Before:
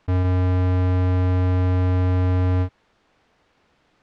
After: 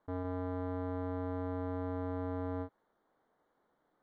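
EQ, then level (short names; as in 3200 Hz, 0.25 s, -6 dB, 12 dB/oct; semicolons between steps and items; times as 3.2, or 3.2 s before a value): running mean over 17 samples; bell 74 Hz -10.5 dB 2.3 oct; low shelf 120 Hz -8.5 dB; -8.0 dB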